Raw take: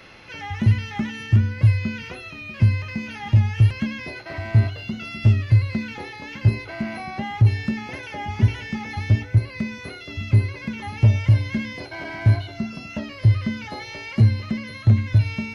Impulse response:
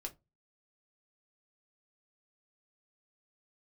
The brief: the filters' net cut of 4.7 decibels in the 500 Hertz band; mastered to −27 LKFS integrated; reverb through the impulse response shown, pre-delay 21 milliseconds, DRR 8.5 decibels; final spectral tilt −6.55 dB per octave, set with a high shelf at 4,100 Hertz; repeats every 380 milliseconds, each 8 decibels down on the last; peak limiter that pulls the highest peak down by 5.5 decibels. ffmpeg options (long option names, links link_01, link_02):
-filter_complex "[0:a]equalizer=frequency=500:width_type=o:gain=-6.5,highshelf=frequency=4100:gain=-3.5,alimiter=limit=-12dB:level=0:latency=1,aecho=1:1:380|760|1140|1520|1900:0.398|0.159|0.0637|0.0255|0.0102,asplit=2[link_01][link_02];[1:a]atrim=start_sample=2205,adelay=21[link_03];[link_02][link_03]afir=irnorm=-1:irlink=0,volume=-6dB[link_04];[link_01][link_04]amix=inputs=2:normalize=0,volume=-2.5dB"